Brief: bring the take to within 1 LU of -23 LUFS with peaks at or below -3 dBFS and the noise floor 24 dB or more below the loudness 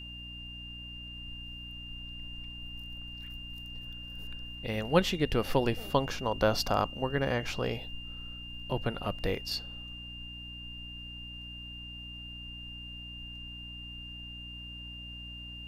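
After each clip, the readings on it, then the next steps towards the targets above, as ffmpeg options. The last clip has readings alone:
hum 60 Hz; harmonics up to 300 Hz; hum level -45 dBFS; steady tone 2800 Hz; tone level -43 dBFS; loudness -35.5 LUFS; peak -9.0 dBFS; loudness target -23.0 LUFS
-> -af "bandreject=f=60:t=h:w=6,bandreject=f=120:t=h:w=6,bandreject=f=180:t=h:w=6,bandreject=f=240:t=h:w=6,bandreject=f=300:t=h:w=6"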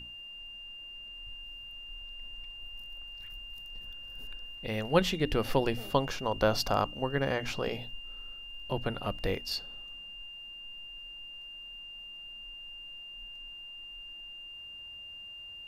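hum none; steady tone 2800 Hz; tone level -43 dBFS
-> -af "bandreject=f=2.8k:w=30"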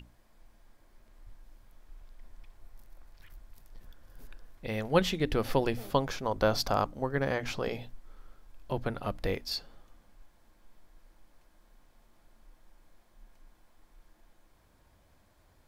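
steady tone none; loudness -31.5 LUFS; peak -10.0 dBFS; loudness target -23.0 LUFS
-> -af "volume=8.5dB,alimiter=limit=-3dB:level=0:latency=1"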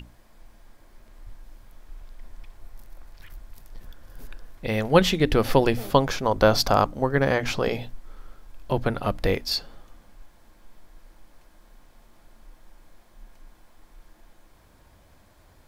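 loudness -23.0 LUFS; peak -3.0 dBFS; noise floor -56 dBFS

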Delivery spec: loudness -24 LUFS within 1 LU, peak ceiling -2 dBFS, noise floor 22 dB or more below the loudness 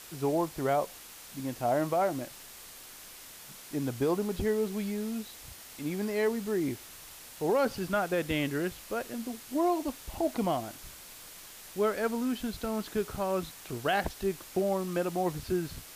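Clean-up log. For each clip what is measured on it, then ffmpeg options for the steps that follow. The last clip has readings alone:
noise floor -49 dBFS; noise floor target -54 dBFS; loudness -32.0 LUFS; peak -18.5 dBFS; loudness target -24.0 LUFS
-> -af "afftdn=nr=6:nf=-49"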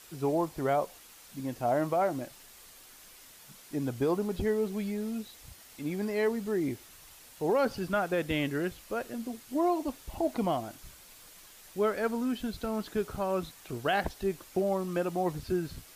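noise floor -54 dBFS; loudness -32.0 LUFS; peak -18.5 dBFS; loudness target -24.0 LUFS
-> -af "volume=8dB"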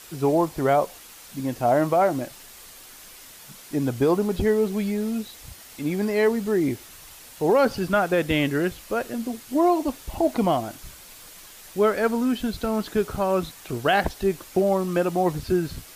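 loudness -24.0 LUFS; peak -10.5 dBFS; noise floor -46 dBFS

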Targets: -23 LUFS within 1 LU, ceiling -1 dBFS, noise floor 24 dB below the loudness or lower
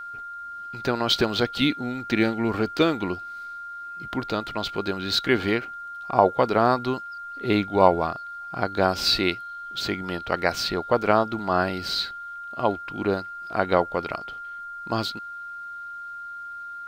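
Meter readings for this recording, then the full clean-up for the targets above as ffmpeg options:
steady tone 1400 Hz; tone level -34 dBFS; loudness -24.5 LUFS; peak -1.5 dBFS; loudness target -23.0 LUFS
-> -af "bandreject=f=1.4k:w=30"
-af "volume=1.5dB,alimiter=limit=-1dB:level=0:latency=1"

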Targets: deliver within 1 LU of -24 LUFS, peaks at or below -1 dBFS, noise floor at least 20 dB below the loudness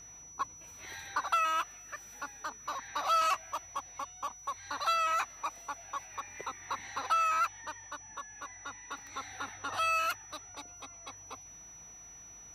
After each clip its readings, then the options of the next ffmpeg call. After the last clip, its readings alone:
hum 50 Hz; harmonics up to 200 Hz; hum level -65 dBFS; steady tone 5900 Hz; tone level -49 dBFS; loudness -34.5 LUFS; peak -19.0 dBFS; loudness target -24.0 LUFS
-> -af "bandreject=f=50:t=h:w=4,bandreject=f=100:t=h:w=4,bandreject=f=150:t=h:w=4,bandreject=f=200:t=h:w=4"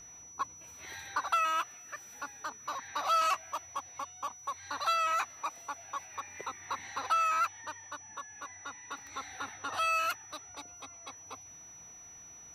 hum none; steady tone 5900 Hz; tone level -49 dBFS
-> -af "bandreject=f=5.9k:w=30"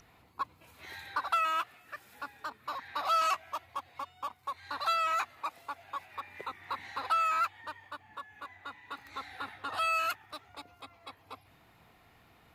steady tone none; loudness -34.0 LUFS; peak -19.0 dBFS; loudness target -24.0 LUFS
-> -af "volume=10dB"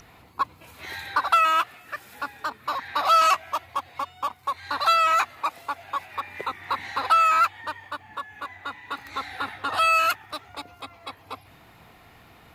loudness -24.0 LUFS; peak -9.0 dBFS; noise floor -53 dBFS

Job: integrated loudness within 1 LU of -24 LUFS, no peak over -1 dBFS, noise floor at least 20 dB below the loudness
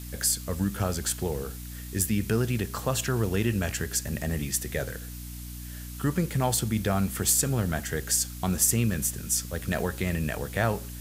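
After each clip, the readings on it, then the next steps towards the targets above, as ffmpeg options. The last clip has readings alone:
hum 60 Hz; harmonics up to 300 Hz; hum level -38 dBFS; noise floor -39 dBFS; noise floor target -48 dBFS; loudness -27.5 LUFS; peak -9.0 dBFS; loudness target -24.0 LUFS
-> -af "bandreject=f=60:t=h:w=6,bandreject=f=120:t=h:w=6,bandreject=f=180:t=h:w=6,bandreject=f=240:t=h:w=6,bandreject=f=300:t=h:w=6"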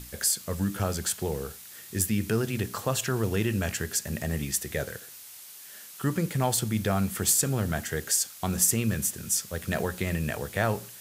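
hum none; noise floor -46 dBFS; noise floor target -48 dBFS
-> -af "afftdn=nr=6:nf=-46"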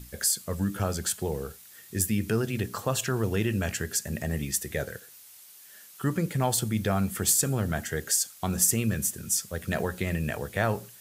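noise floor -51 dBFS; loudness -28.0 LUFS; peak -9.5 dBFS; loudness target -24.0 LUFS
-> -af "volume=4dB"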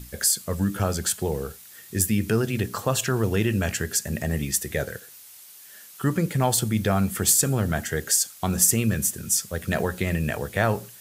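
loudness -24.0 LUFS; peak -5.5 dBFS; noise floor -47 dBFS

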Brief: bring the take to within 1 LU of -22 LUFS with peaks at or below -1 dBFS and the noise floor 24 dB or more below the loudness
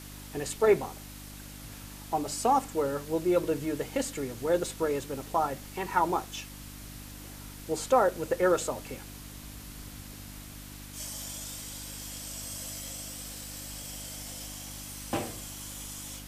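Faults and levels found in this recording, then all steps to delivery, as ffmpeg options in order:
hum 50 Hz; harmonics up to 300 Hz; hum level -44 dBFS; noise floor -45 dBFS; noise floor target -56 dBFS; loudness -31.5 LUFS; peak -11.0 dBFS; loudness target -22.0 LUFS
-> -af "bandreject=f=50:t=h:w=4,bandreject=f=100:t=h:w=4,bandreject=f=150:t=h:w=4,bandreject=f=200:t=h:w=4,bandreject=f=250:t=h:w=4,bandreject=f=300:t=h:w=4"
-af "afftdn=nr=11:nf=-45"
-af "volume=9.5dB"

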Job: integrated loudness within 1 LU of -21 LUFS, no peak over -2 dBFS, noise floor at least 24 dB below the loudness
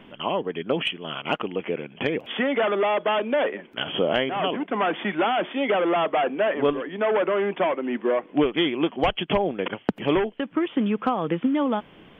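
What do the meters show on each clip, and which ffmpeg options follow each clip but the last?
loudness -24.5 LUFS; peak -10.0 dBFS; loudness target -21.0 LUFS
-> -af "volume=3.5dB"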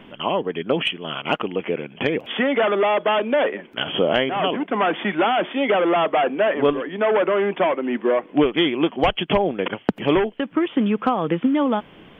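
loudness -21.0 LUFS; peak -6.5 dBFS; noise floor -47 dBFS

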